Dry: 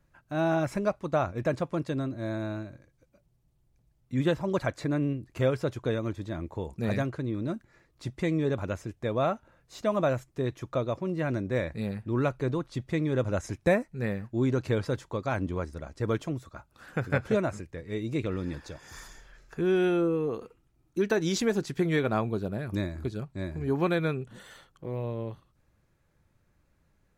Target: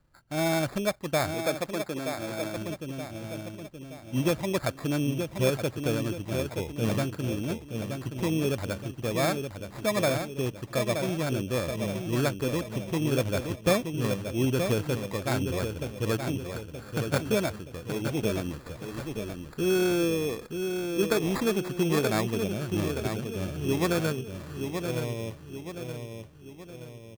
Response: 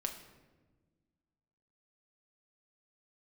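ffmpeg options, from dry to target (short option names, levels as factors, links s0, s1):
-filter_complex "[0:a]asplit=2[s0][s1];[s1]adelay=924,lowpass=f=1700:p=1,volume=0.501,asplit=2[s2][s3];[s3]adelay=924,lowpass=f=1700:p=1,volume=0.48,asplit=2[s4][s5];[s5]adelay=924,lowpass=f=1700:p=1,volume=0.48,asplit=2[s6][s7];[s7]adelay=924,lowpass=f=1700:p=1,volume=0.48,asplit=2[s8][s9];[s9]adelay=924,lowpass=f=1700:p=1,volume=0.48,asplit=2[s10][s11];[s11]adelay=924,lowpass=f=1700:p=1,volume=0.48[s12];[s0][s2][s4][s6][s8][s10][s12]amix=inputs=7:normalize=0,asettb=1/sr,asplit=3[s13][s14][s15];[s13]atrim=end=1.344[s16];[s14]atrim=start=1.34:end=2.57,asetpts=PTS-STARTPTS,afade=t=in:d=0.004:c=qsin,afade=t=out:st=1.226:d=0.004:c=qsin,acrossover=split=270|3000[s17][s18][s19];[s17]acompressor=threshold=0.00794:ratio=6[s20];[s20][s18][s19]amix=inputs=3:normalize=0[s21];[s15]atrim=start=2.566[s22];[s16][s21]acrossfade=d=0.004:c1=hsin:c2=qsin[s23];[s23][s22]acrossfade=d=0.004:c1=qsin:c2=hsin,acrusher=samples=15:mix=1:aa=0.000001"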